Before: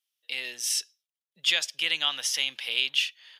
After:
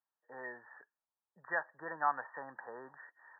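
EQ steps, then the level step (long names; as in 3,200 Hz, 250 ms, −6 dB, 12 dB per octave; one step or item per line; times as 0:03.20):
linear-phase brick-wall low-pass 1,900 Hz
parametric band 910 Hz +13.5 dB 0.86 octaves
−2.5 dB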